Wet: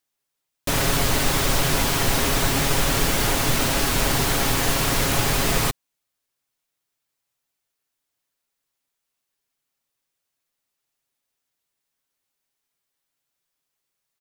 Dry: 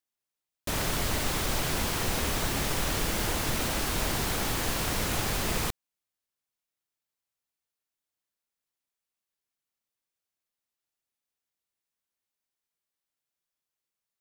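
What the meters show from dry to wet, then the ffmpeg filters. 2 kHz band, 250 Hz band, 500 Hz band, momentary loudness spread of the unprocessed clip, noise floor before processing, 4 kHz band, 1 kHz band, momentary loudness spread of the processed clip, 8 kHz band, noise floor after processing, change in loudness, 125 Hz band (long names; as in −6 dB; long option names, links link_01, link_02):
+8.0 dB, +8.0 dB, +8.5 dB, 2 LU, below −85 dBFS, +8.0 dB, +8.0 dB, 2 LU, +8.0 dB, −81 dBFS, +8.0 dB, +8.5 dB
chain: -af "aecho=1:1:7.3:0.43,volume=7.5dB"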